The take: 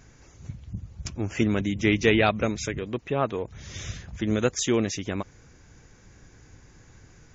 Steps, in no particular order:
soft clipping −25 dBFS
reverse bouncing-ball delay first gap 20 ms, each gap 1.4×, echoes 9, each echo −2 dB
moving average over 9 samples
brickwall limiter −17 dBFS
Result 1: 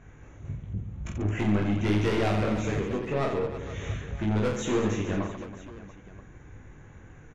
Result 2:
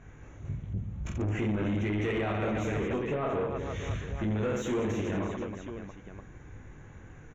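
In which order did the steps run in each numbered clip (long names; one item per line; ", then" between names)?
moving average, then soft clipping, then reverse bouncing-ball delay, then brickwall limiter
reverse bouncing-ball delay, then brickwall limiter, then soft clipping, then moving average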